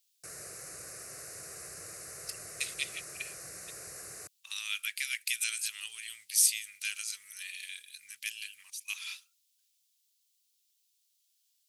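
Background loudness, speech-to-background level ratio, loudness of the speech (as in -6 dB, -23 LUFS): -43.5 LUFS, 10.0 dB, -33.5 LUFS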